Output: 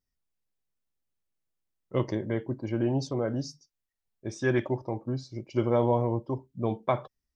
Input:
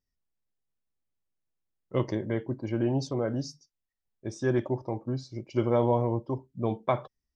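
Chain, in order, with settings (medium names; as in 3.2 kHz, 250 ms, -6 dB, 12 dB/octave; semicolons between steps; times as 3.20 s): 4.29–4.77 s: peaking EQ 2.3 kHz +9 dB 1.3 oct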